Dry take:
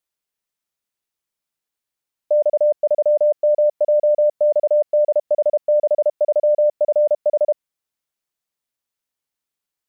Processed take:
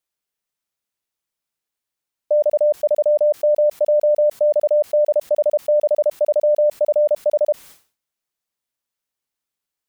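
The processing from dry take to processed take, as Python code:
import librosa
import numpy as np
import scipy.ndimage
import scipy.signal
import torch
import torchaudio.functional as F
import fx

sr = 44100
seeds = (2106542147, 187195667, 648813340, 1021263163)

y = fx.sustainer(x, sr, db_per_s=150.0)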